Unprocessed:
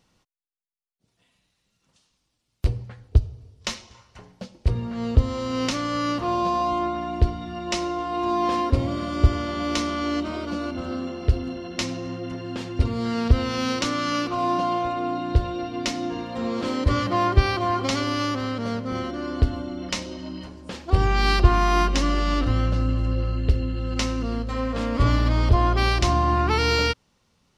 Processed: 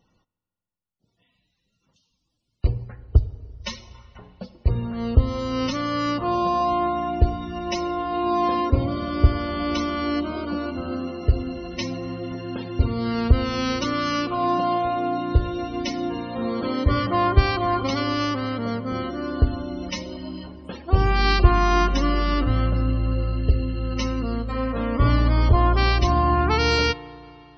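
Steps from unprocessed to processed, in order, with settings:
spectral peaks only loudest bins 64
spring reverb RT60 3.1 s, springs 34/49 ms, chirp 30 ms, DRR 17.5 dB
level +1 dB

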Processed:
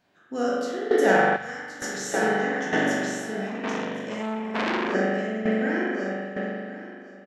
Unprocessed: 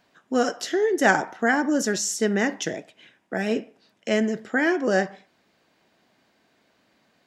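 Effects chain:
peak hold with a decay on every bin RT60 0.67 s
parametric band 150 Hz +3.5 dB 2.8 octaves
repeating echo 1,070 ms, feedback 18%, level −4 dB
spring reverb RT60 2.6 s, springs 41 ms, chirp 80 ms, DRR −6.5 dB
shaped tremolo saw down 1.1 Hz, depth 70%
0:01.36–0:02.14: drawn EQ curve 110 Hz 0 dB, 280 Hz −18 dB, 5,600 Hz −1 dB
0:03.47–0:04.95: saturating transformer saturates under 2,300 Hz
level −8 dB

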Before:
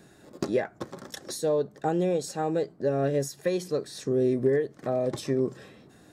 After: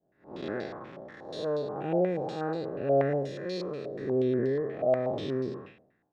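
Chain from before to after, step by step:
spectrum smeared in time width 236 ms
downward expander −44 dBFS
low-pass on a step sequencer 8.3 Hz 650–4,500 Hz
level −1.5 dB

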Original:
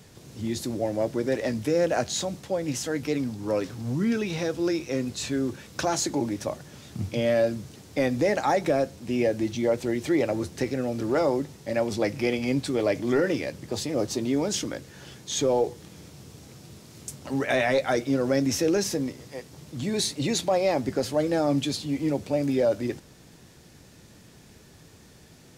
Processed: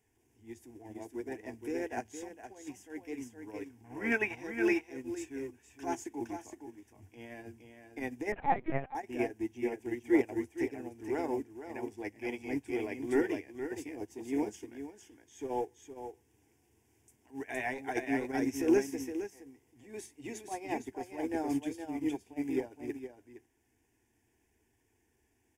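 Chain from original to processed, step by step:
0:03.84–0:04.35: flat-topped bell 1,200 Hz +13.5 dB 2.5 octaves
on a send: single-tap delay 465 ms −4 dB
on the sum: transient designer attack −6 dB, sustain −2 dB
phaser with its sweep stopped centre 840 Hz, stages 8
0:08.32–0:08.95: linear-prediction vocoder at 8 kHz pitch kept
expander for the loud parts 2.5 to 1, over −35 dBFS
level +1 dB

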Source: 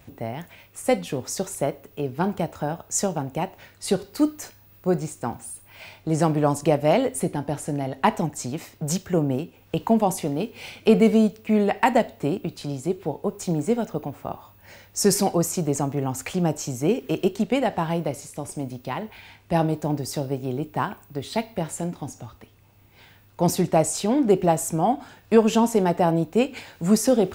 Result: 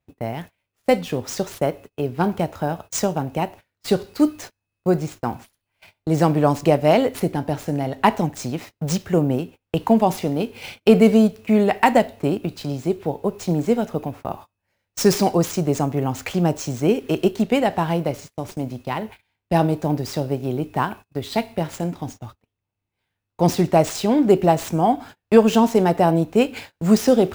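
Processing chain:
running median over 5 samples
noise gate −40 dBFS, range −30 dB
high-shelf EQ 5,500 Hz +4 dB
level +3.5 dB

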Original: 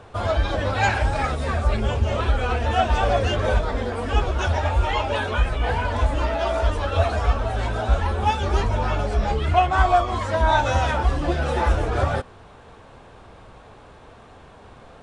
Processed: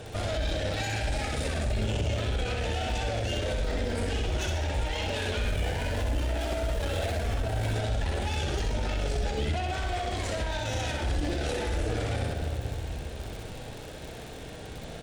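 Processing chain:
0:05.41–0:07.73: running median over 9 samples
high-shelf EQ 3,900 Hz +8 dB
convolution reverb RT60 2.0 s, pre-delay 6 ms, DRR 12 dB
downward compressor, threshold −23 dBFS, peak gain reduction 11 dB
harmonic generator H 6 −17 dB, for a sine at −14 dBFS
surface crackle 60 per second −37 dBFS
repeating echo 64 ms, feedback 46%, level −4 dB
brickwall limiter −24 dBFS, peak gain reduction 12.5 dB
parametric band 1,100 Hz −14 dB 0.76 octaves
level +4.5 dB

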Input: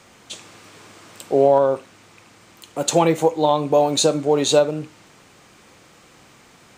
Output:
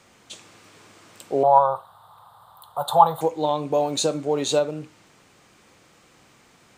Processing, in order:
0:01.43–0:03.21: drawn EQ curve 150 Hz 0 dB, 280 Hz −25 dB, 840 Hz +14 dB, 1,200 Hz +11 dB, 2,400 Hz −25 dB, 3,600 Hz +4 dB, 6,100 Hz −24 dB, 11,000 Hz +8 dB
level −5.5 dB

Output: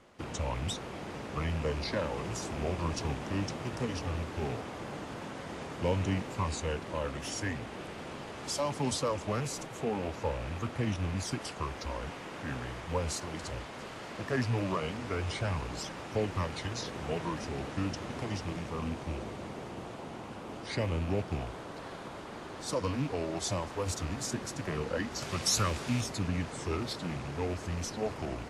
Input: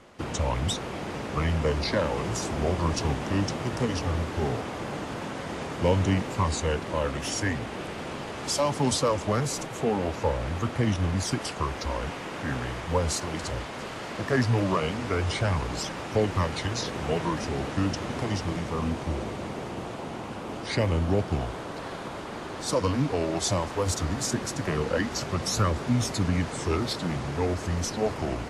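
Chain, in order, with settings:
loose part that buzzes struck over −28 dBFS, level −30 dBFS
0:25.22–0:26.01: high-shelf EQ 2,100 Hz +10 dB
level −7 dB

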